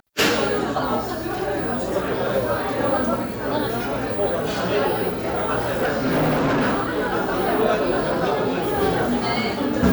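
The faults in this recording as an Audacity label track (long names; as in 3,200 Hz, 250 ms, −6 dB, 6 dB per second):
5.720000	7.140000	clipping −16.5 dBFS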